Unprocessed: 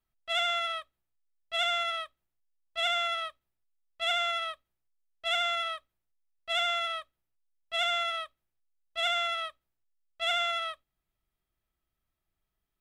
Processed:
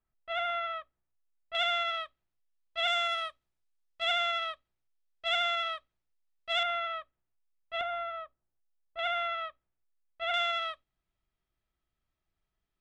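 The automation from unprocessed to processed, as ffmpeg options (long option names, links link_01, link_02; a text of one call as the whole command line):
ffmpeg -i in.wav -af "asetnsamples=nb_out_samples=441:pad=0,asendcmd='1.55 lowpass f 4400;2.88 lowpass f 8500;4.02 lowpass f 5200;6.63 lowpass f 2200;7.81 lowpass f 1200;8.99 lowpass f 2200;10.34 lowpass f 5000',lowpass=1900" out.wav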